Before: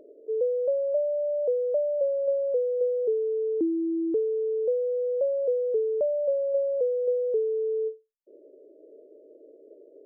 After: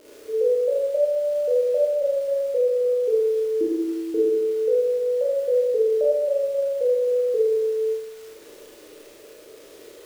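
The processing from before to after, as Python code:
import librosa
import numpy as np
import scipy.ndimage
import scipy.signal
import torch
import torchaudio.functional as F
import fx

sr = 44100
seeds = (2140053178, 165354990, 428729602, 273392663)

y = fx.dmg_crackle(x, sr, seeds[0], per_s=450.0, level_db=-40.0)
y = fx.rev_schroeder(y, sr, rt60_s=1.2, comb_ms=26, drr_db=-6.5)
y = y * 10.0 ** (-2.0 / 20.0)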